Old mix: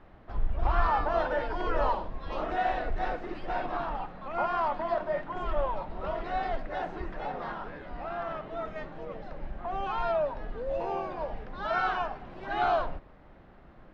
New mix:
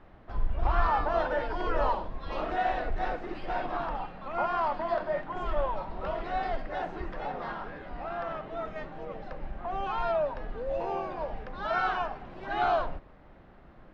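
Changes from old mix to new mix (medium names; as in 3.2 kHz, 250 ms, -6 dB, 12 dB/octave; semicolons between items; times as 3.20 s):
second sound +7.0 dB; reverb: on, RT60 1.1 s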